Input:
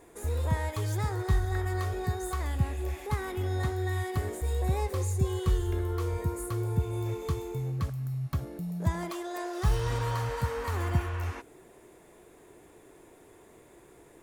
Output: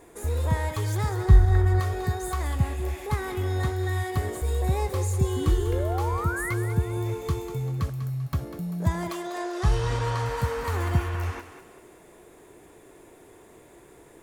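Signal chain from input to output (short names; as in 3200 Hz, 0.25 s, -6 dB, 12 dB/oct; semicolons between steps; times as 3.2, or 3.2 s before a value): 1.25–1.8 tilt -2 dB/oct; 5.36–6.54 painted sound rise 250–2200 Hz -36 dBFS; 9.22–10.26 LPF 8600 Hz 12 dB/oct; thinning echo 0.196 s, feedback 41%, high-pass 420 Hz, level -10.5 dB; gain +3.5 dB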